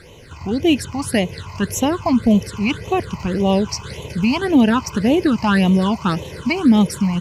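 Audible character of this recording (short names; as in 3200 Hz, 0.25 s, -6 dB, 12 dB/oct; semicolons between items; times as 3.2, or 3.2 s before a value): a quantiser's noise floor 12-bit, dither none; phasing stages 8, 1.8 Hz, lowest notch 460–1500 Hz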